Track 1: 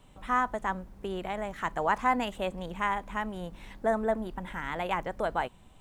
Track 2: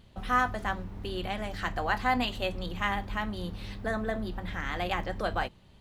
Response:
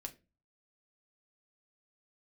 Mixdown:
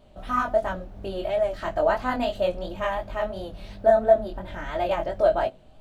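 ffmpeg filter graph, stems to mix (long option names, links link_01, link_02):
-filter_complex "[0:a]lowpass=frequency=1800:poles=1,volume=2.5dB,asplit=2[link_01][link_02];[link_02]volume=-5dB[link_03];[1:a]volume=0dB[link_04];[2:a]atrim=start_sample=2205[link_05];[link_03][link_05]afir=irnorm=-1:irlink=0[link_06];[link_01][link_04][link_06]amix=inputs=3:normalize=0,equalizer=frequency=100:width_type=o:width=0.33:gain=-4,equalizer=frequency=200:width_type=o:width=0.33:gain=-4,equalizer=frequency=630:width_type=o:width=0.33:gain=12,equalizer=frequency=1000:width_type=o:width=0.33:gain=-6,equalizer=frequency=2000:width_type=o:width=0.33:gain=-5,flanger=delay=19.5:depth=4.6:speed=2.9"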